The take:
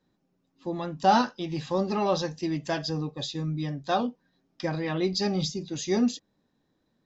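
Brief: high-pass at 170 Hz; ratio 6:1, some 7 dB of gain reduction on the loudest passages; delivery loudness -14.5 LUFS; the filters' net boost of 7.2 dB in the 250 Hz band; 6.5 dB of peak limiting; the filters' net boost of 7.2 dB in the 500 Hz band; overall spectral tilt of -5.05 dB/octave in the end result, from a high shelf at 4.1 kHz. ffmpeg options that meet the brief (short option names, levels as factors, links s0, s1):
-af "highpass=170,equalizer=f=250:t=o:g=8.5,equalizer=f=500:t=o:g=6.5,highshelf=f=4100:g=8,acompressor=threshold=0.126:ratio=6,volume=4.22,alimiter=limit=0.631:level=0:latency=1"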